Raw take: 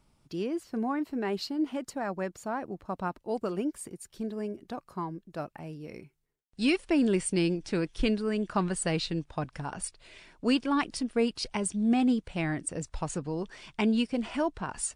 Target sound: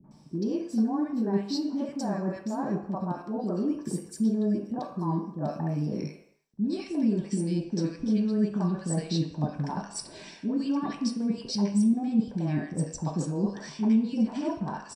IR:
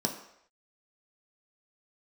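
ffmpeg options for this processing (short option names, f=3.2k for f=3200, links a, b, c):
-filter_complex "[0:a]alimiter=limit=-22.5dB:level=0:latency=1,areverse,acompressor=threshold=-42dB:ratio=6,areverse,acrossover=split=390|1500[a][b][c];[b]adelay=40[d];[c]adelay=110[e];[a][d][e]amix=inputs=3:normalize=0[f];[1:a]atrim=start_sample=2205,afade=t=out:st=0.38:d=0.01,atrim=end_sample=17199[g];[f][g]afir=irnorm=-1:irlink=0,volume=4dB"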